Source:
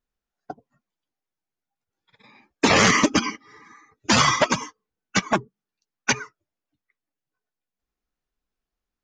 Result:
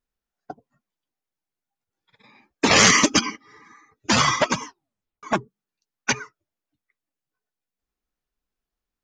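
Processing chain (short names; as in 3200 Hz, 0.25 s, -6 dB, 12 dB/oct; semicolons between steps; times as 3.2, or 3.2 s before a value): 2.71–3.21 high shelf 2900 Hz +9.5 dB; 4.65 tape stop 0.58 s; gain -1 dB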